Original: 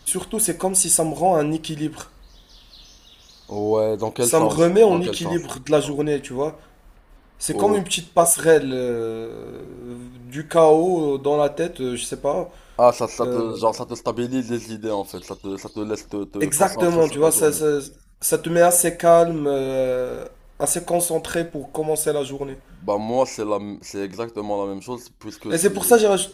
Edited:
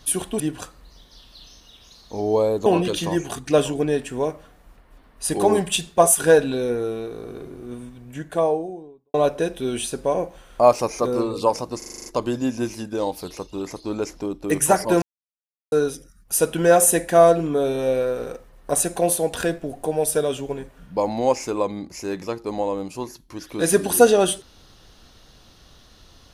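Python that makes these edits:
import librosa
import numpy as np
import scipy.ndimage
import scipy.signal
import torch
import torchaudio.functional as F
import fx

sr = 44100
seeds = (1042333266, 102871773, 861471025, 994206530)

y = fx.studio_fade_out(x, sr, start_s=9.9, length_s=1.43)
y = fx.edit(y, sr, fx.cut(start_s=0.4, length_s=1.38),
    fx.cut(start_s=4.04, length_s=0.81),
    fx.stutter(start_s=13.97, slice_s=0.04, count=8),
    fx.silence(start_s=16.93, length_s=0.7), tone=tone)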